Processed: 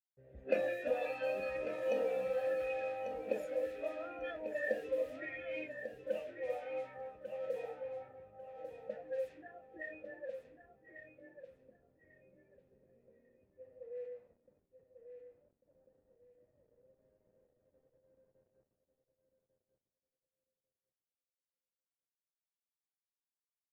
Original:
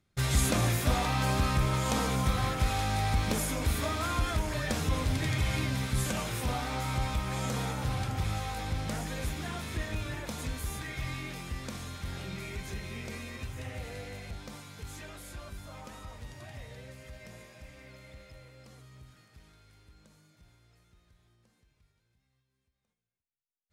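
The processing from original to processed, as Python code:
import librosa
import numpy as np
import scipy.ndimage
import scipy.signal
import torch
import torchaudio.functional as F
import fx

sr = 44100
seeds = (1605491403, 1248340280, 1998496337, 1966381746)

p1 = fx.vowel_filter(x, sr, vowel='e')
p2 = fx.noise_reduce_blind(p1, sr, reduce_db=15)
p3 = fx.quant_dither(p2, sr, seeds[0], bits=12, dither='none')
p4 = fx.env_lowpass(p3, sr, base_hz=310.0, full_db=-41.5)
p5 = p4 + fx.echo_feedback(p4, sr, ms=1145, feedback_pct=21, wet_db=-9, dry=0)
y = F.gain(torch.from_numpy(p5), 7.5).numpy()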